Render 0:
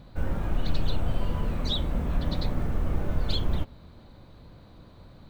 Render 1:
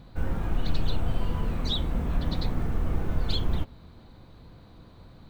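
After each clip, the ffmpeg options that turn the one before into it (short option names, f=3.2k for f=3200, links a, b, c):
-af "bandreject=f=580:w=12"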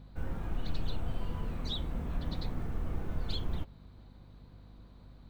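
-af "aeval=exprs='val(0)+0.00562*(sin(2*PI*50*n/s)+sin(2*PI*2*50*n/s)/2+sin(2*PI*3*50*n/s)/3+sin(2*PI*4*50*n/s)/4+sin(2*PI*5*50*n/s)/5)':c=same,volume=-8dB"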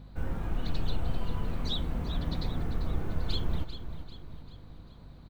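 -af "aecho=1:1:393|786|1179|1572|1965:0.282|0.135|0.0649|0.0312|0.015,volume=3.5dB"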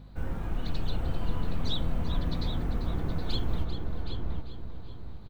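-filter_complex "[0:a]asplit=2[a][b];[b]adelay=769,lowpass=f=1.9k:p=1,volume=-3dB,asplit=2[c][d];[d]adelay=769,lowpass=f=1.9k:p=1,volume=0.27,asplit=2[e][f];[f]adelay=769,lowpass=f=1.9k:p=1,volume=0.27,asplit=2[g][h];[h]adelay=769,lowpass=f=1.9k:p=1,volume=0.27[i];[a][c][e][g][i]amix=inputs=5:normalize=0"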